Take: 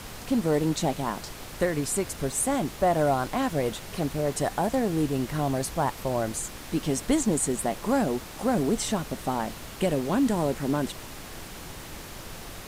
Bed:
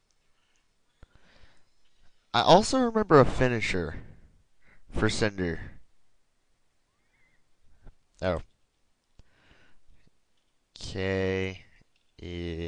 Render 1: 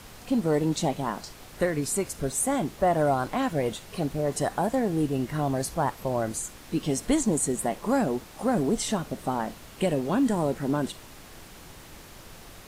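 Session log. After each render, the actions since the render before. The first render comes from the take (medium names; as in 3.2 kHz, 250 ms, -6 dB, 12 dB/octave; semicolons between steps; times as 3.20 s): noise print and reduce 6 dB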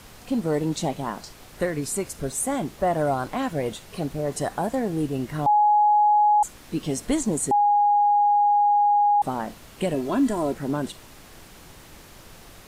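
5.46–6.43 s: bleep 836 Hz -14.5 dBFS; 7.51–9.22 s: bleep 824 Hz -15.5 dBFS; 9.94–10.53 s: comb 3 ms, depth 58%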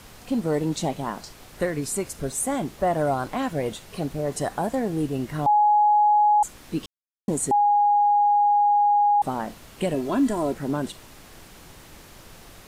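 6.86–7.28 s: mute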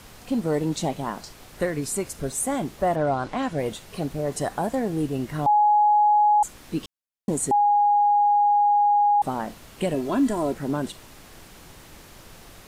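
2.95–3.57 s: low-pass 4.1 kHz -> 9.3 kHz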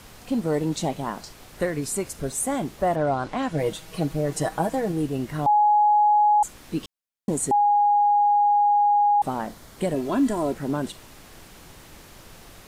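3.53–4.92 s: comb 6.3 ms; 9.47–9.96 s: peaking EQ 2.7 kHz -9 dB 0.3 oct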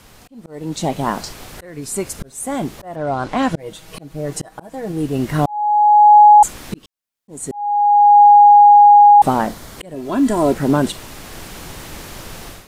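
level rider gain up to 13 dB; slow attack 705 ms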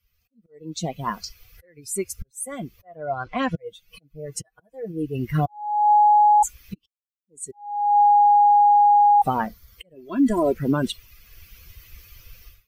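expander on every frequency bin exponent 2; peak limiter -11.5 dBFS, peak gain reduction 7.5 dB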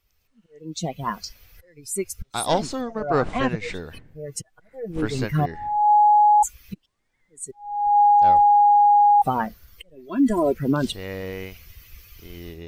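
add bed -4 dB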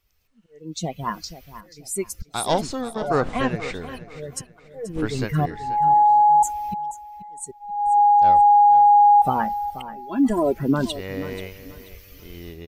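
feedback delay 483 ms, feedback 28%, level -14 dB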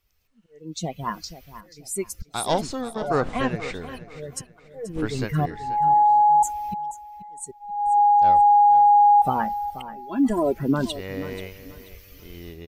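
trim -1.5 dB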